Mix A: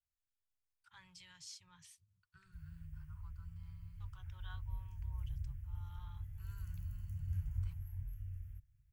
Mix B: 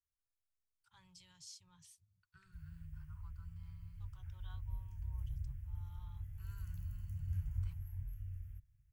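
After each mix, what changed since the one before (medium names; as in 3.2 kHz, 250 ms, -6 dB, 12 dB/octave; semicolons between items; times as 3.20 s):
first voice: add peaking EQ 1.9 kHz -11 dB 1.5 oct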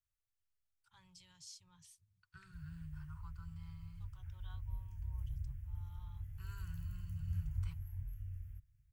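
second voice +7.0 dB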